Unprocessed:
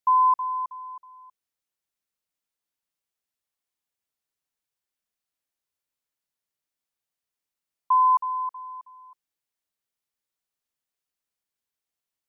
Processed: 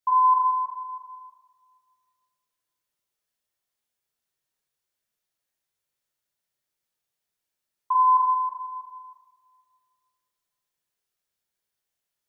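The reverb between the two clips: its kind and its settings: two-slope reverb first 0.7 s, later 2.2 s, DRR -6.5 dB; gain -4 dB

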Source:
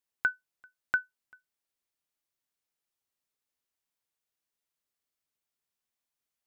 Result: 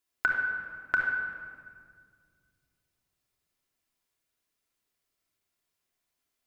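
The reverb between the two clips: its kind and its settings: shoebox room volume 3600 m³, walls mixed, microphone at 3.1 m; gain +2.5 dB

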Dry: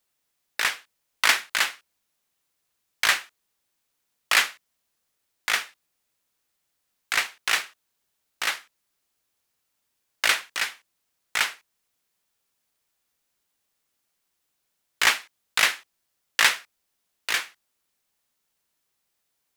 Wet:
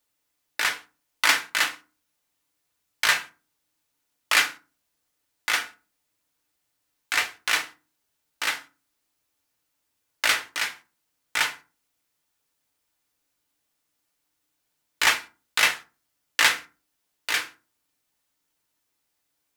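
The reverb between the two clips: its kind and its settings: FDN reverb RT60 0.32 s, low-frequency decay 1.5×, high-frequency decay 0.6×, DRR 4 dB; gain -1 dB

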